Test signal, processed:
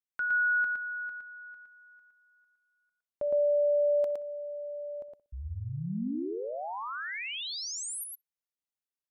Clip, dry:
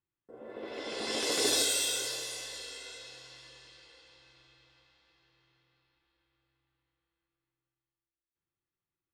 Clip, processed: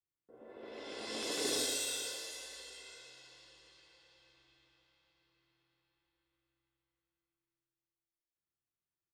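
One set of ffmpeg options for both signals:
-filter_complex "[0:a]asplit=2[a][b];[b]aecho=0:1:113:0.668[c];[a][c]amix=inputs=2:normalize=0,adynamicequalizer=threshold=0.0141:dfrequency=240:dqfactor=1.1:tfrequency=240:tqfactor=1.1:attack=5:release=100:ratio=0.375:range=2.5:mode=boostabove:tftype=bell,asplit=2[d][e];[e]adelay=62,lowpass=f=1.3k:p=1,volume=-17dB,asplit=2[f][g];[g]adelay=62,lowpass=f=1.3k:p=1,volume=0.27,asplit=2[h][i];[i]adelay=62,lowpass=f=1.3k:p=1,volume=0.27[j];[f][h][j]amix=inputs=3:normalize=0[k];[d][k]amix=inputs=2:normalize=0,volume=-8.5dB"

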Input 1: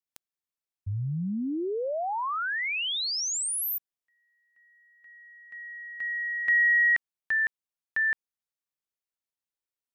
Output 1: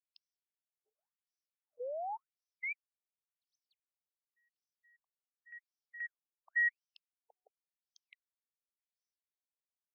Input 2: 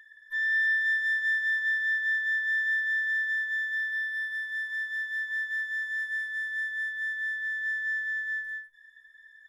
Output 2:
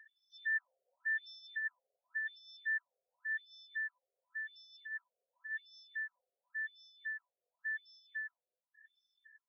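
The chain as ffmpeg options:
-af "aexciter=amount=6.1:drive=5.5:freq=5.4k,asubboost=boost=7.5:cutoff=200,afftfilt=real='re*between(b*sr/1024,530*pow(4500/530,0.5+0.5*sin(2*PI*0.91*pts/sr))/1.41,530*pow(4500/530,0.5+0.5*sin(2*PI*0.91*pts/sr))*1.41)':imag='im*between(b*sr/1024,530*pow(4500/530,0.5+0.5*sin(2*PI*0.91*pts/sr))/1.41,530*pow(4500/530,0.5+0.5*sin(2*PI*0.91*pts/sr))*1.41)':win_size=1024:overlap=0.75,volume=-6.5dB"

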